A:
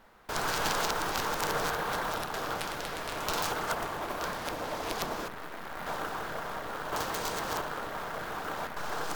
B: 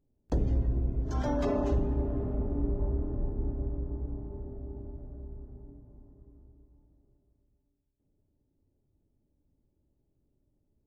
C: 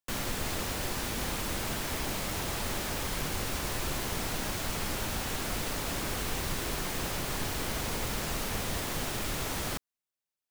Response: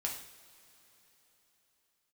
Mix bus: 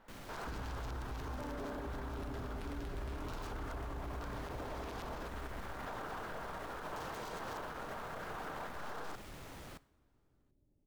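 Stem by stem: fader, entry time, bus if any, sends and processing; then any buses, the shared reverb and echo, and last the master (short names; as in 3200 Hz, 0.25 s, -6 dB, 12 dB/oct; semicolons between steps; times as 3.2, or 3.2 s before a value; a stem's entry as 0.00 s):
-5.5 dB, 0.00 s, send -20 dB, vocal rider 2 s
-0.5 dB, 0.15 s, no send, limiter -26 dBFS, peak gain reduction 7.5 dB
-12.5 dB, 0.00 s, send -15.5 dB, soft clip -32 dBFS, distortion -12 dB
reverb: on, pre-delay 3 ms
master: high shelf 3500 Hz -9 dB; limiter -34.5 dBFS, peak gain reduction 14 dB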